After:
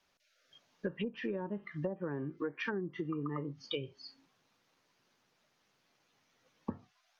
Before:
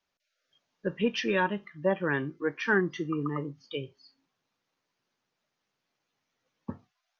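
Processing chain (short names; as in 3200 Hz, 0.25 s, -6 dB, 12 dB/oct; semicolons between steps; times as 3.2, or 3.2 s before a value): treble ducked by the level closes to 550 Hz, closed at -22.5 dBFS; compressor 8:1, threshold -42 dBFS, peak gain reduction 19.5 dB; gain +7.5 dB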